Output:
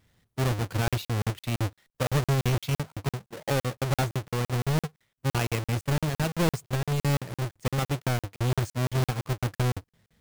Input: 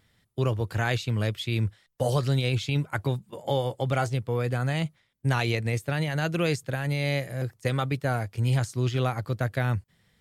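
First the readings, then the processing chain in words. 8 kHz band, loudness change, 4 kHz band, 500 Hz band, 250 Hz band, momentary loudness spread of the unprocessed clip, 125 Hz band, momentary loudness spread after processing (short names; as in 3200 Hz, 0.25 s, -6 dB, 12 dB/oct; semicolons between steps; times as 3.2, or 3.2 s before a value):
+4.5 dB, -1.0 dB, -1.0 dB, -3.0 dB, -0.5 dB, 5 LU, -1.0 dB, 6 LU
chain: half-waves squared off; crackling interface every 0.17 s, samples 2048, zero, from 0.88; gain -5 dB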